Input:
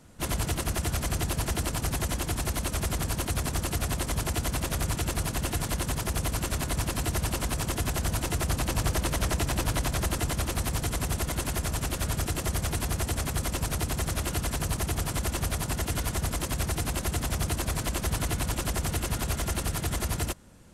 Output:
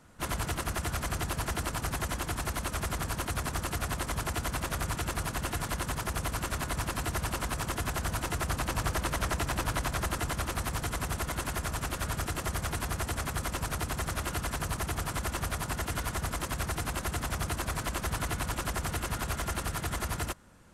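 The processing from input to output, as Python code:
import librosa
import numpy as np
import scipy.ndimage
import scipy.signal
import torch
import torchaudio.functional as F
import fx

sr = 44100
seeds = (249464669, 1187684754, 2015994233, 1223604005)

y = fx.peak_eq(x, sr, hz=1300.0, db=7.5, octaves=1.5)
y = F.gain(torch.from_numpy(y), -5.0).numpy()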